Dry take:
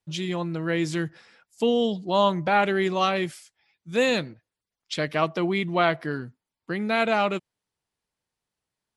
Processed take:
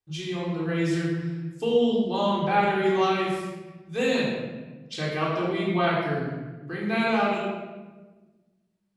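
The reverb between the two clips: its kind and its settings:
rectangular room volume 900 cubic metres, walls mixed, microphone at 3.7 metres
level −9 dB

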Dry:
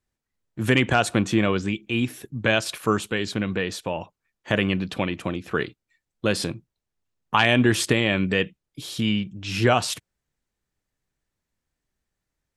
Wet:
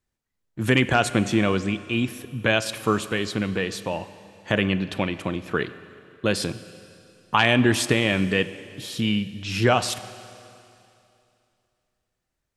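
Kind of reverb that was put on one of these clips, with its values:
four-comb reverb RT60 2.7 s, combs from 31 ms, DRR 14 dB

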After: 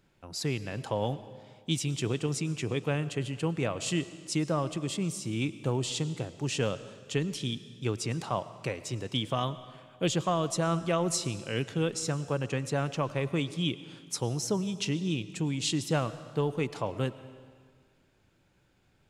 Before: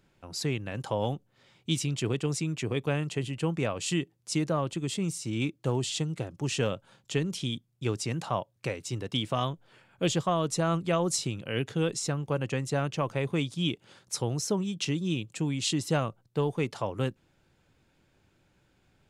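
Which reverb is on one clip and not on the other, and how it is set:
comb and all-pass reverb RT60 1.8 s, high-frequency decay 0.95×, pre-delay 65 ms, DRR 14.5 dB
level −1 dB

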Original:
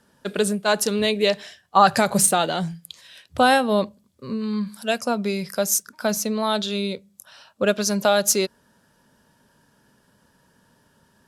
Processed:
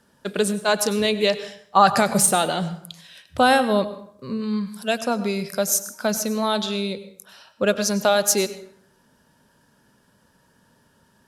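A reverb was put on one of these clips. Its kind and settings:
dense smooth reverb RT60 0.65 s, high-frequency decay 0.65×, pre-delay 85 ms, DRR 13 dB

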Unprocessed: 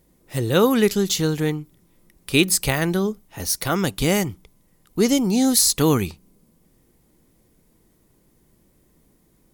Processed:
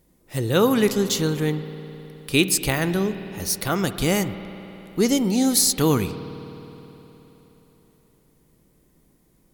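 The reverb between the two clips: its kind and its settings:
spring reverb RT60 3.7 s, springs 52 ms, chirp 30 ms, DRR 11 dB
level −1.5 dB

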